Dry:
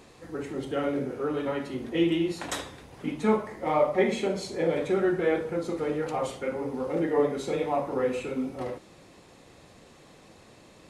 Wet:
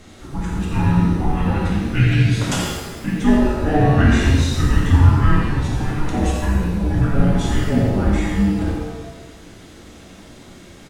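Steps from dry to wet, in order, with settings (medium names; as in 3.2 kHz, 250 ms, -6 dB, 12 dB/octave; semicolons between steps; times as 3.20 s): echo from a far wall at 15 m, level -7 dB; frequency shift -460 Hz; pitch-shifted reverb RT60 1.1 s, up +7 st, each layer -8 dB, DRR -1 dB; trim +7 dB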